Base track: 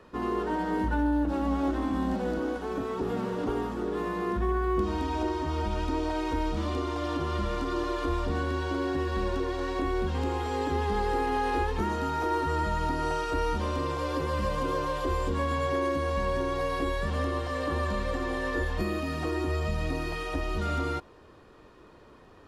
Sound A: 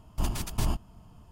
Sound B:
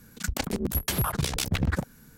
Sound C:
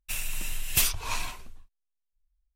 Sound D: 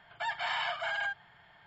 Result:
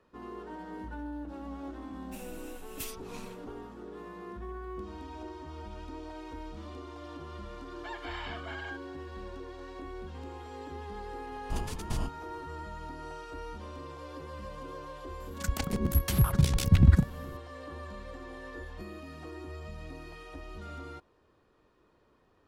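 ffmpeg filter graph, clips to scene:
-filter_complex "[0:a]volume=-13.5dB[a];[1:a]lowpass=11k[b];[2:a]asubboost=boost=10:cutoff=240[c];[3:a]atrim=end=2.55,asetpts=PTS-STARTPTS,volume=-17dB,afade=t=in:d=0.004:c=hsin,afade=t=out:st=2.546:d=0.004:c=hsin,adelay=2030[d];[4:a]atrim=end=1.66,asetpts=PTS-STARTPTS,volume=-8.5dB,afade=t=in:d=0.004:c=hsin,afade=t=out:st=1.656:d=0.004:c=hsin,adelay=7640[e];[b]atrim=end=1.31,asetpts=PTS-STARTPTS,volume=-5.5dB,afade=t=in:d=0.004:c=hsin,afade=t=out:st=1.306:d=0.004:c=hsin,adelay=11320[f];[c]atrim=end=2.17,asetpts=PTS-STARTPTS,volume=-5.5dB,afade=t=in:d=0.004:c=hsin,afade=t=out:st=2.166:d=0.004:c=hsin,adelay=15200[g];[a][d][e][f][g]amix=inputs=5:normalize=0"

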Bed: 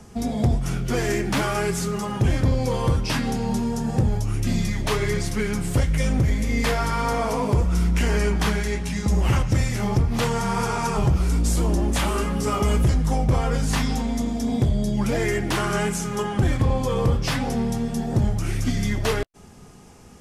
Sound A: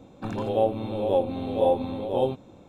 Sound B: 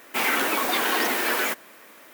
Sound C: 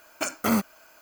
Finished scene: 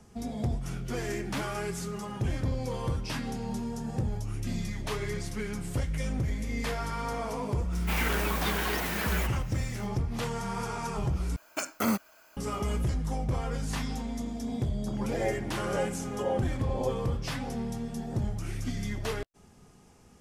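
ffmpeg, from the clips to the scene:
-filter_complex "[0:a]volume=-10dB[a];[3:a]acontrast=38[b];[1:a]lowpass=1.4k[c];[a]asplit=2[d][e];[d]atrim=end=11.364[f];[b]atrim=end=1.01,asetpts=PTS-STARTPTS,volume=-9.5dB[g];[e]atrim=start=12.366[h];[2:a]atrim=end=2.13,asetpts=PTS-STARTPTS,volume=-8.5dB,afade=t=in:d=0.004:c=hsin,afade=t=out:st=2.126:d=0.004:c=hsin,adelay=7730[i];[c]atrim=end=2.68,asetpts=PTS-STARTPTS,volume=-9dB,afade=t=in:d=0.004:c=hsin,afade=t=out:st=2.676:d=0.004:c=hsin,adelay=14640[j];[f][g]acrossfade=d=0.004:c1=hsin:c2=hsin[k];[k][h]acrossfade=d=0.004:c1=hsin:c2=hsin[l];[l][i][j]amix=inputs=3:normalize=0"

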